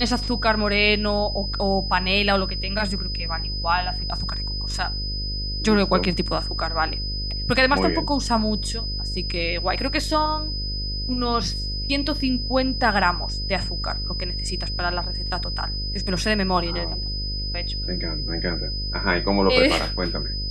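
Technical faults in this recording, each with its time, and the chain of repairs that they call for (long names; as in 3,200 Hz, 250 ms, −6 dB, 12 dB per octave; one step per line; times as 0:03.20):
mains buzz 50 Hz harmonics 11 −29 dBFS
whistle 5,000 Hz −29 dBFS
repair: notch filter 5,000 Hz, Q 30
hum removal 50 Hz, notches 11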